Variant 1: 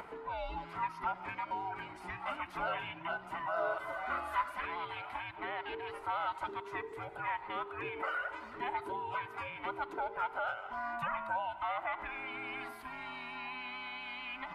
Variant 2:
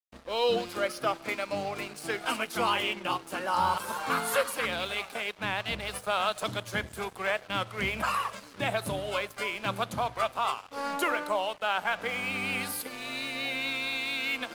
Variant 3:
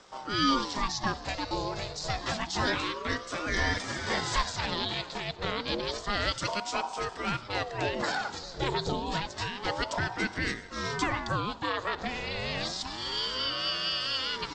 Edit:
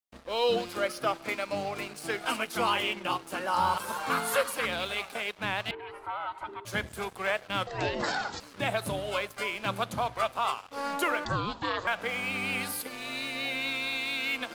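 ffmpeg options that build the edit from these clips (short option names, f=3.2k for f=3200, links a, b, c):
-filter_complex "[2:a]asplit=2[a][b];[1:a]asplit=4[c][d][e][f];[c]atrim=end=5.712[g];[0:a]atrim=start=5.708:end=6.652[h];[d]atrim=start=6.648:end=7.672[i];[a]atrim=start=7.668:end=8.402[j];[e]atrim=start=8.398:end=11.252[k];[b]atrim=start=11.248:end=11.872[l];[f]atrim=start=11.868[m];[g][h]acrossfade=d=0.004:c1=hsin:c2=hsin[n];[n][i]acrossfade=d=0.004:c1=hsin:c2=hsin[o];[o][j]acrossfade=d=0.004:c1=hsin:c2=hsin[p];[p][k]acrossfade=d=0.004:c1=hsin:c2=hsin[q];[q][l]acrossfade=d=0.004:c1=hsin:c2=hsin[r];[r][m]acrossfade=d=0.004:c1=hsin:c2=hsin"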